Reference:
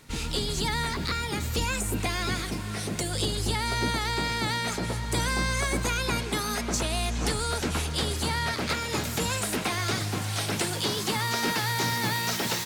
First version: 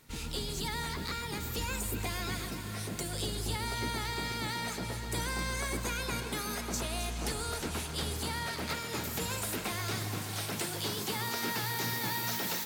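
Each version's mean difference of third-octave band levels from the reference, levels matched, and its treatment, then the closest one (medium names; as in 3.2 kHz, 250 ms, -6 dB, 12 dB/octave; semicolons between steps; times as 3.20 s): 2.0 dB: peaking EQ 15 kHz +12 dB 0.47 oct; echo whose repeats swap between lows and highs 133 ms, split 1.2 kHz, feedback 82%, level -9 dB; trim -8 dB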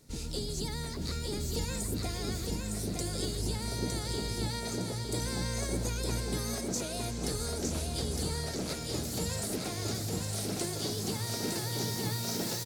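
4.0 dB: high-order bell 1.7 kHz -10.5 dB 2.3 oct; on a send: feedback delay 910 ms, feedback 39%, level -3.5 dB; on the sum: trim -5.5 dB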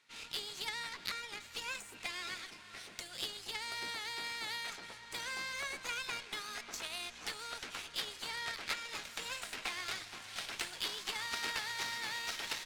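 6.5 dB: band-pass filter 2.6 kHz, Q 0.8; Chebyshev shaper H 3 -12 dB, 8 -31 dB, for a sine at -18.5 dBFS; trim +1 dB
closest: first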